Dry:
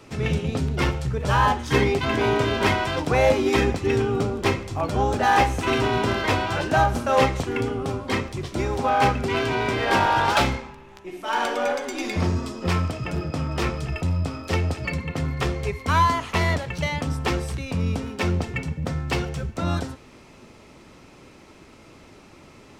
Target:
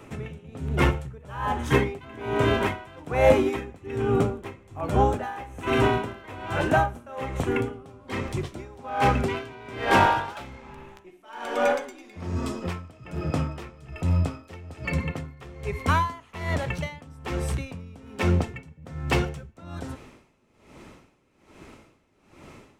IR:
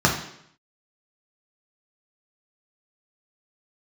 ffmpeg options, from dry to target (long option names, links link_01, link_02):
-af "asetnsamples=nb_out_samples=441:pad=0,asendcmd='7.73 equalizer g -5.5',equalizer=frequency=4800:width_type=o:width=0.81:gain=-12,aeval=exprs='val(0)*pow(10,-22*(0.5-0.5*cos(2*PI*1.2*n/s))/20)':channel_layout=same,volume=2.5dB"